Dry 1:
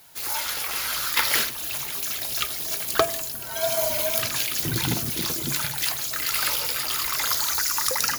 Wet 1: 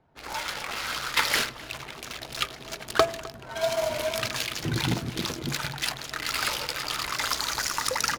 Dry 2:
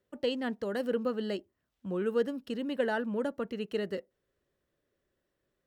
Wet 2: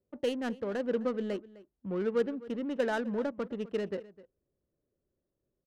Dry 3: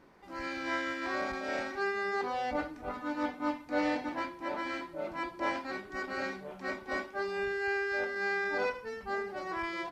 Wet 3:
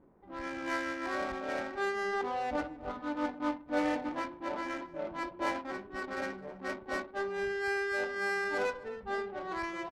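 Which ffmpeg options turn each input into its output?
-filter_complex "[0:a]adynamicsmooth=sensitivity=6.5:basefreq=650,asplit=2[link_01][link_02];[link_02]adelay=256.6,volume=-19dB,highshelf=frequency=4000:gain=-5.77[link_03];[link_01][link_03]amix=inputs=2:normalize=0"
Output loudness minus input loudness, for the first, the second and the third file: −5.0, 0.0, −0.5 LU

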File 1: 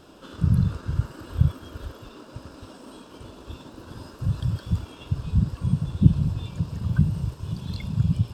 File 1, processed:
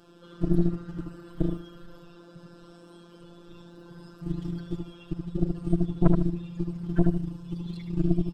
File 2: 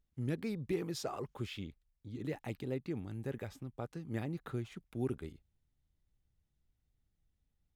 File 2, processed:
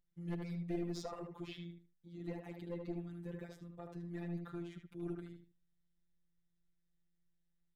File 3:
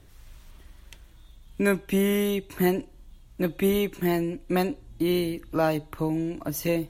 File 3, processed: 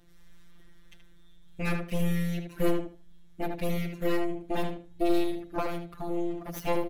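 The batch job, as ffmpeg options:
-filter_complex "[0:a]highshelf=frequency=8000:gain=-5.5,afftfilt=real='hypot(re,im)*cos(PI*b)':imag='0':win_size=1024:overlap=0.75,aeval=exprs='clip(val(0),-1,0.2)':channel_layout=same,aeval=exprs='0.398*(cos(1*acos(clip(val(0)/0.398,-1,1)))-cos(1*PI/2))+0.112*(cos(4*acos(clip(val(0)/0.398,-1,1)))-cos(4*PI/2))+0.0447*(cos(8*acos(clip(val(0)/0.398,-1,1)))-cos(8*PI/2))':channel_layout=same,asplit=2[link_01][link_02];[link_02]adelay=76,lowpass=frequency=2600:poles=1,volume=-4.5dB,asplit=2[link_03][link_04];[link_04]adelay=76,lowpass=frequency=2600:poles=1,volume=0.24,asplit=2[link_05][link_06];[link_06]adelay=76,lowpass=frequency=2600:poles=1,volume=0.24[link_07];[link_03][link_05][link_07]amix=inputs=3:normalize=0[link_08];[link_01][link_08]amix=inputs=2:normalize=0,volume=-1.5dB"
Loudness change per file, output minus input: −3.5, −4.0, −5.0 LU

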